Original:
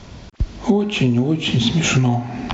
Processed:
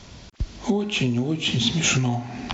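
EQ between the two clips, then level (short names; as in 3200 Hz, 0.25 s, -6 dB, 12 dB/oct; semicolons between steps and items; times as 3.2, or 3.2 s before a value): high shelf 2600 Hz +8.5 dB; -6.5 dB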